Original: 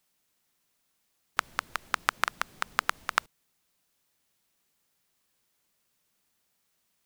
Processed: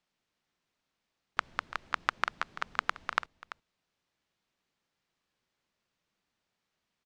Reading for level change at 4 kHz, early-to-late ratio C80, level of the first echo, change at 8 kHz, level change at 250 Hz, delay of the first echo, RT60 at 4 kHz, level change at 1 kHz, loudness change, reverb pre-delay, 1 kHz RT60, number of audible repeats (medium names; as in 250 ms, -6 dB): -5.0 dB, no reverb, -15.0 dB, -12.5 dB, -2.0 dB, 338 ms, no reverb, -2.5 dB, -3.0 dB, no reverb, no reverb, 1